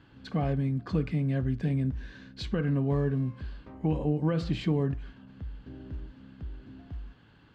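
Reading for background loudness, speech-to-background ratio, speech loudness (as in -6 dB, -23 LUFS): -44.5 LUFS, 14.5 dB, -30.0 LUFS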